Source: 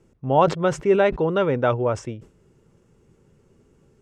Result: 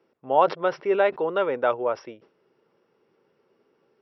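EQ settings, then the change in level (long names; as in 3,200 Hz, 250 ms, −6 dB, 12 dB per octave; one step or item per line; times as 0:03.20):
high-pass filter 470 Hz 12 dB per octave
linear-phase brick-wall low-pass 5,800 Hz
high-shelf EQ 3,200 Hz −7 dB
0.0 dB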